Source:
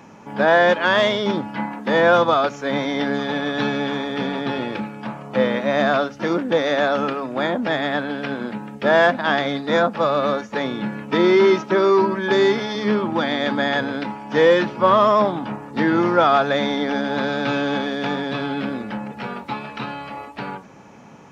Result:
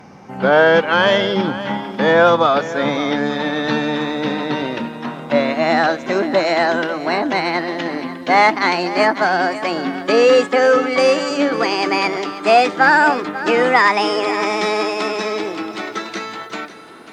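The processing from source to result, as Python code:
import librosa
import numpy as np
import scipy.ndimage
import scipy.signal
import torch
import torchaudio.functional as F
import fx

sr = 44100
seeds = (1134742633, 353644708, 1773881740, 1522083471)

y = fx.speed_glide(x, sr, from_pct=90, to_pct=159)
y = y + 10.0 ** (-14.0 / 20.0) * np.pad(y, (int(543 * sr / 1000.0), 0))[:len(y)]
y = y * 10.0 ** (3.0 / 20.0)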